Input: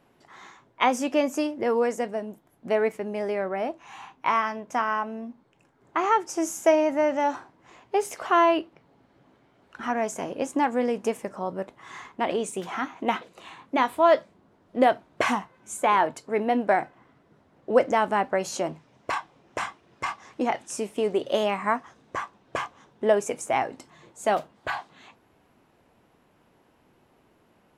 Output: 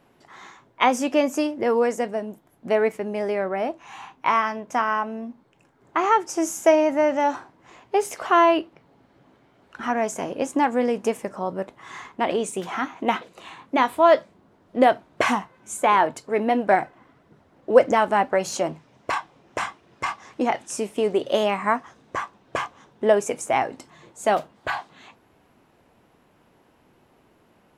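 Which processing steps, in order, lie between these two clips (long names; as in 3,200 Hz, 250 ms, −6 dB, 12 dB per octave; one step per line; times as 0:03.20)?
0:16.15–0:18.63: phase shifter 1.7 Hz, delay 4.1 ms, feedback 28%
level +3 dB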